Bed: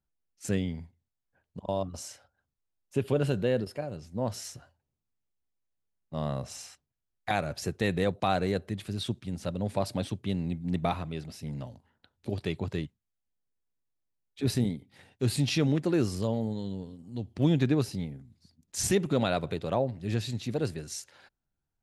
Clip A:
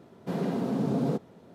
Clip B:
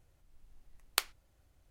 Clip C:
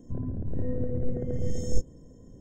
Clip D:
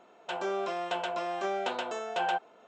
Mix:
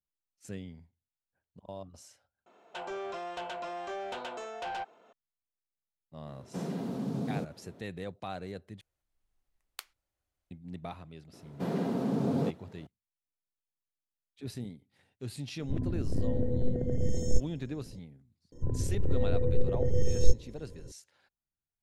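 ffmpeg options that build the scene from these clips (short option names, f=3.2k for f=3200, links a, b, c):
-filter_complex "[1:a]asplit=2[a][b];[3:a]asplit=2[c][d];[0:a]volume=-12.5dB[e];[4:a]asoftclip=type=tanh:threshold=-29dB[f];[a]acrossover=split=210|3000[g][h][i];[h]acompressor=threshold=-33dB:ratio=6:attack=3.2:release=140:knee=2.83:detection=peak[j];[g][j][i]amix=inputs=3:normalize=0[k];[2:a]lowshelf=f=380:g=-8.5[l];[c]equalizer=f=1.2k:t=o:w=0.37:g=-7.5[m];[d]aecho=1:1:2.2:0.61[n];[e]asplit=3[o][p][q];[o]atrim=end=2.464[r];[f]atrim=end=2.67,asetpts=PTS-STARTPTS,volume=-3.5dB[s];[p]atrim=start=5.126:end=8.814[t];[l]atrim=end=1.7,asetpts=PTS-STARTPTS,volume=-13dB[u];[q]atrim=start=10.506[v];[k]atrim=end=1.54,asetpts=PTS-STARTPTS,volume=-3.5dB,afade=t=in:d=0.004:c=hsin,afade=t=out:st=1.536:d=0.004:c=hsin,adelay=6270[w];[b]atrim=end=1.54,asetpts=PTS-STARTPTS,volume=-2dB,afade=t=in:d=0.004:c=hsin,afade=t=out:st=1.536:d=0.004:c=hsin,adelay=11330[x];[m]atrim=end=2.4,asetpts=PTS-STARTPTS,afade=t=in:d=0.004:c=hsin,afade=t=out:st=2.396:d=0.004:c=hsin,adelay=15590[y];[n]atrim=end=2.4,asetpts=PTS-STARTPTS,afade=t=in:d=0.004:c=hsin,afade=t=out:st=2.396:d=0.004:c=hsin,adelay=18520[z];[r][s]acrossfade=d=0.004:c1=hsin:c2=hsin[aa];[aa][t]acrossfade=d=0.004:c1=hsin:c2=hsin[ab];[ab][u]acrossfade=d=0.004:c1=hsin:c2=hsin[ac];[ac][v]acrossfade=d=0.004:c1=hsin:c2=hsin[ad];[ad][w][x][y][z]amix=inputs=5:normalize=0"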